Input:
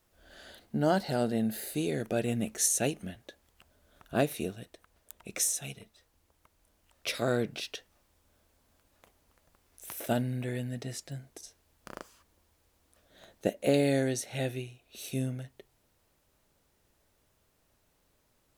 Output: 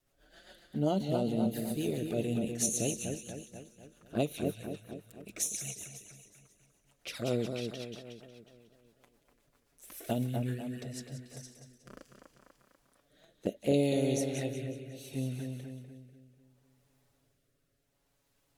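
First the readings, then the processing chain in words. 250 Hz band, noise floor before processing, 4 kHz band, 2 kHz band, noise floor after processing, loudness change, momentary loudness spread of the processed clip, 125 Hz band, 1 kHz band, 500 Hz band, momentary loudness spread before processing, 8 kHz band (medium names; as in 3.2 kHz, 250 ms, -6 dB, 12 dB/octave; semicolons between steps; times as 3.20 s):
-0.5 dB, -72 dBFS, -4.0 dB, -7.5 dB, -75 dBFS, -2.5 dB, 19 LU, -1.0 dB, -5.5 dB, -2.0 dB, 21 LU, -3.5 dB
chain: touch-sensitive flanger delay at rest 7.4 ms, full sweep at -27 dBFS; two-band feedback delay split 2.4 kHz, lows 246 ms, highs 182 ms, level -6 dB; rotary cabinet horn 7.5 Hz, later 0.7 Hz, at 10.51 s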